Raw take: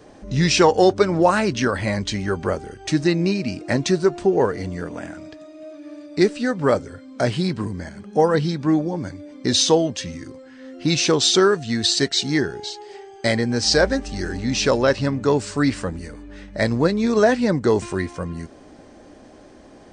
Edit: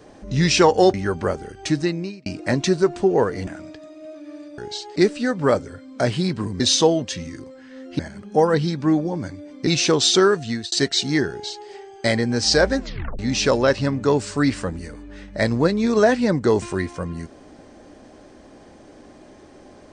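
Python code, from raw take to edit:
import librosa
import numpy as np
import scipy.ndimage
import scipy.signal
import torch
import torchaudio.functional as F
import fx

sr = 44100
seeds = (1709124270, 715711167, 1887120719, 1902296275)

y = fx.edit(x, sr, fx.cut(start_s=0.94, length_s=1.22),
    fx.fade_out_span(start_s=2.89, length_s=0.59),
    fx.cut(start_s=4.69, length_s=0.36),
    fx.move(start_s=9.48, length_s=1.39, to_s=7.8),
    fx.fade_out_span(start_s=11.67, length_s=0.25),
    fx.duplicate(start_s=12.5, length_s=0.38, to_s=6.16),
    fx.tape_stop(start_s=13.98, length_s=0.41), tone=tone)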